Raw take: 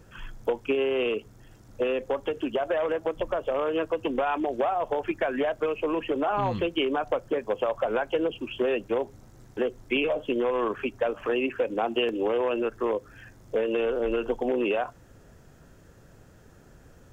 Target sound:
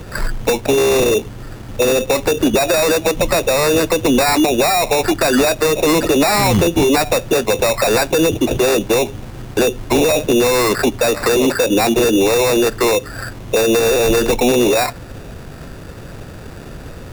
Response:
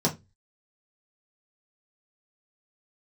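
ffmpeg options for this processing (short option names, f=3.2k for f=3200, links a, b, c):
-filter_complex "[0:a]apsyclip=27.5dB,acrusher=samples=14:mix=1:aa=0.000001,acrossover=split=270|3000[a][b][c];[b]acompressor=threshold=-6dB:ratio=6[d];[a][d][c]amix=inputs=3:normalize=0,volume=-7dB"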